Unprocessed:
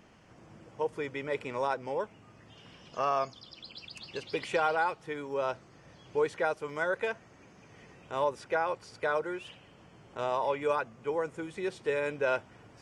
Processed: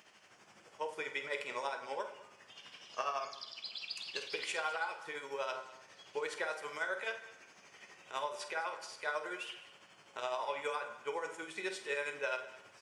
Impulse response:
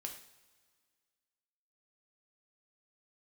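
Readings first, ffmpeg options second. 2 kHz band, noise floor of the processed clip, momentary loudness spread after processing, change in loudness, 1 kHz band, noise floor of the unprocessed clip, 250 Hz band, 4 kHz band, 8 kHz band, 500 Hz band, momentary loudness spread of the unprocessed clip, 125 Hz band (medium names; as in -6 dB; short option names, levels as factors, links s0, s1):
-2.5 dB, -62 dBFS, 16 LU, -7.0 dB, -7.0 dB, -57 dBFS, -13.0 dB, +2.0 dB, +3.5 dB, -9.5 dB, 14 LU, -19.5 dB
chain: -filter_complex "[0:a]lowpass=f=1900:p=1,aderivative,bandreject=f=65.2:t=h:w=4,bandreject=f=130.4:t=h:w=4,bandreject=f=195.6:t=h:w=4,bandreject=f=260.8:t=h:w=4,bandreject=f=326:t=h:w=4,bandreject=f=391.2:t=h:w=4,bandreject=f=456.4:t=h:w=4,bandreject=f=521.6:t=h:w=4,bandreject=f=586.8:t=h:w=4,bandreject=f=652:t=h:w=4,bandreject=f=717.2:t=h:w=4,bandreject=f=782.4:t=h:w=4,bandreject=f=847.6:t=h:w=4,bandreject=f=912.8:t=h:w=4,bandreject=f=978:t=h:w=4,bandreject=f=1043.2:t=h:w=4,bandreject=f=1108.4:t=h:w=4,bandreject=f=1173.6:t=h:w=4,bandreject=f=1238.8:t=h:w=4,bandreject=f=1304:t=h:w=4,bandreject=f=1369.2:t=h:w=4,bandreject=f=1434.4:t=h:w=4,bandreject=f=1499.6:t=h:w=4,bandreject=f=1564.8:t=h:w=4,bandreject=f=1630:t=h:w=4,bandreject=f=1695.2:t=h:w=4,bandreject=f=1760.4:t=h:w=4,bandreject=f=1825.6:t=h:w=4,bandreject=f=1890.8:t=h:w=4,bandreject=f=1956:t=h:w=4,bandreject=f=2021.2:t=h:w=4,bandreject=f=2086.4:t=h:w=4,bandreject=f=2151.6:t=h:w=4,bandreject=f=2216.8:t=h:w=4,bandreject=f=2282:t=h:w=4,acompressor=threshold=0.00316:ratio=4,tremolo=f=12:d=0.64,aecho=1:1:49|207:0.251|0.126,asplit=2[s0][s1];[1:a]atrim=start_sample=2205[s2];[s1][s2]afir=irnorm=-1:irlink=0,volume=1.58[s3];[s0][s3]amix=inputs=2:normalize=0,volume=4.22"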